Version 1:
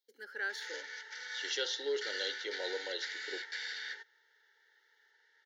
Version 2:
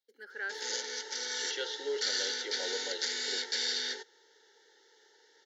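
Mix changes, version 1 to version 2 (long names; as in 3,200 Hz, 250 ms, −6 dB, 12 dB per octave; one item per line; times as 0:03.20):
speech: add high-shelf EQ 4,900 Hz −7 dB
background: remove resonant band-pass 1,800 Hz, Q 1.9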